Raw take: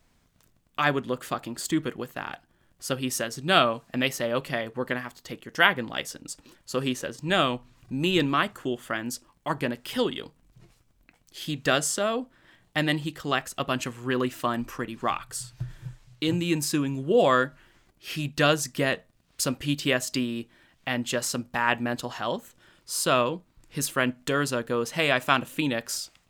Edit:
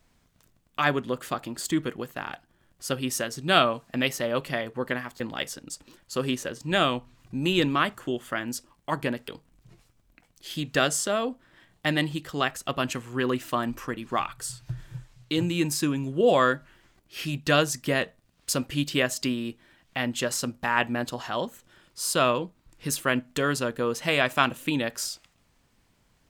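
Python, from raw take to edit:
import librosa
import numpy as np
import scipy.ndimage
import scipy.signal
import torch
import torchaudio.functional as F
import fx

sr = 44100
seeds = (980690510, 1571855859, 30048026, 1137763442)

y = fx.edit(x, sr, fx.cut(start_s=5.2, length_s=0.58),
    fx.cut(start_s=9.86, length_s=0.33), tone=tone)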